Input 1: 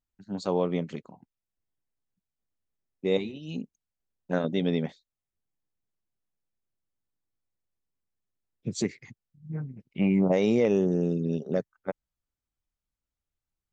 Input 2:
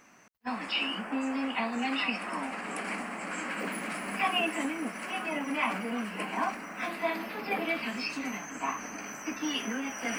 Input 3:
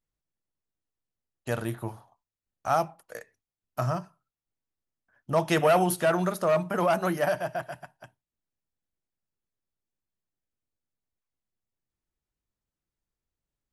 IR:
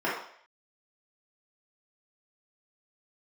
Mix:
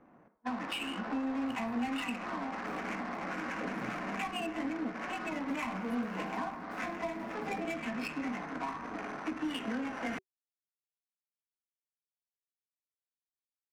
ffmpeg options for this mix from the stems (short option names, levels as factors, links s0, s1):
-filter_complex "[1:a]adynamicsmooth=sensitivity=7.5:basefreq=600,volume=1.41,asplit=2[s0][s1];[s1]volume=0.133[s2];[2:a]bandreject=f=50:t=h:w=6,bandreject=f=100:t=h:w=6,bandreject=f=150:t=h:w=6,bandreject=f=200:t=h:w=6,bandreject=f=250:t=h:w=6,bandreject=f=300:t=h:w=6,bandreject=f=350:t=h:w=6,acrusher=bits=4:mix=0:aa=0.000001,volume=0.158,agate=range=0.447:threshold=0.00355:ratio=16:detection=peak,acompressor=threshold=0.00447:ratio=10,volume=1[s3];[3:a]atrim=start_sample=2205[s4];[s2][s4]afir=irnorm=-1:irlink=0[s5];[s0][s3][s5]amix=inputs=3:normalize=0,highshelf=f=7100:g=-4.5,bandreject=f=380:w=12,acrossover=split=210[s6][s7];[s7]acompressor=threshold=0.0158:ratio=6[s8];[s6][s8]amix=inputs=2:normalize=0"